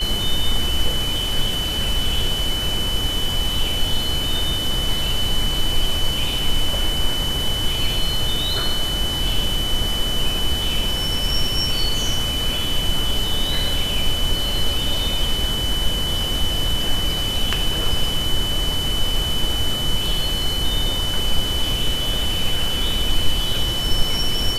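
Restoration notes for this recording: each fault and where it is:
whine 3 kHz -23 dBFS

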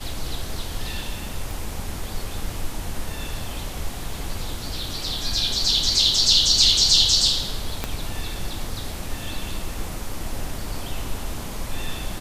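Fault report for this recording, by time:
1.51 s: pop
7.84 s: pop -10 dBFS

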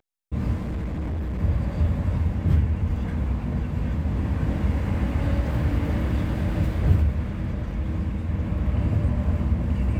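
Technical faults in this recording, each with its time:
0.60–1.41 s: clipped -25 dBFS

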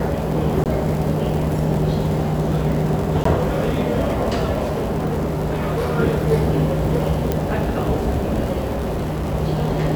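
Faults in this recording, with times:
crackle 55 per s -24 dBFS
0.64–0.66 s: dropout 18 ms
3.24–3.25 s: dropout
4.65–5.99 s: clipped -17.5 dBFS
7.32 s: pop -7 dBFS
8.72–9.35 s: clipped -19.5 dBFS

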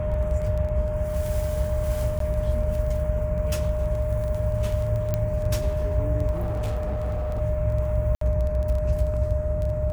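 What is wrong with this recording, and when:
crackle 11 per s -29 dBFS
whine 610 Hz -28 dBFS
2.19–2.20 s: dropout 13 ms
5.14 s: pop -12 dBFS
6.32–7.41 s: clipped -23 dBFS
8.15–8.21 s: dropout 63 ms

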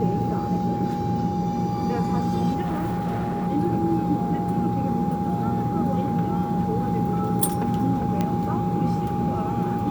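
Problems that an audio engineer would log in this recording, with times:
whine 820 Hz -28 dBFS
2.61–3.48 s: clipped -22 dBFS
8.21 s: pop -12 dBFS

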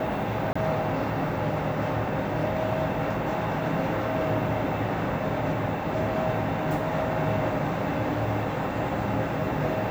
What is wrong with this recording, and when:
0.53–0.56 s: dropout 25 ms

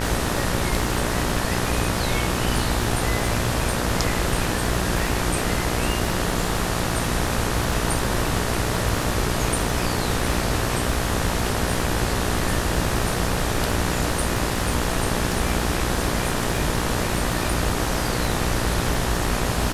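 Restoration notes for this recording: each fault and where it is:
buzz 60 Hz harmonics 32 -27 dBFS
crackle 58 per s -28 dBFS

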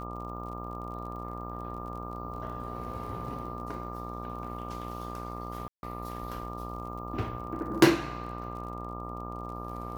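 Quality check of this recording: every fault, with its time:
buzz 60 Hz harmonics 22 -40 dBFS
crackle 40 per s -42 dBFS
whine 1.2 kHz -41 dBFS
5.68–5.83 s: dropout 151 ms

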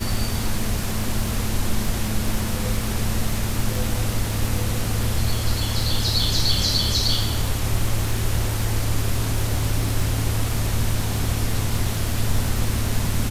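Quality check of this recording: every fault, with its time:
crackle 98 per s -27 dBFS

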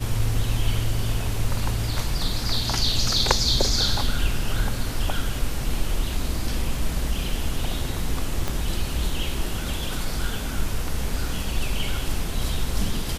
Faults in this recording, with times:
8.48 s: pop

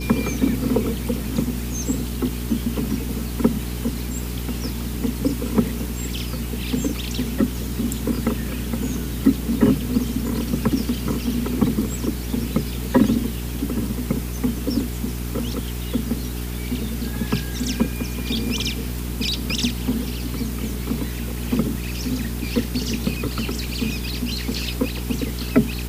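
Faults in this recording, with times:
hum 60 Hz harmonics 7 -28 dBFS

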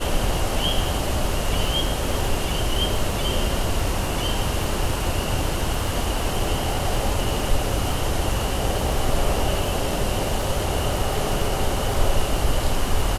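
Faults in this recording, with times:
crackle 51 per s -29 dBFS

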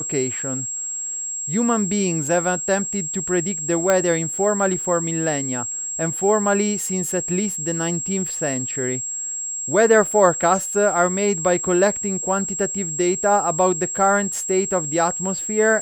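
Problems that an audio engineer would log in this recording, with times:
whine 7.6 kHz -25 dBFS
3.90 s: pop -5 dBFS

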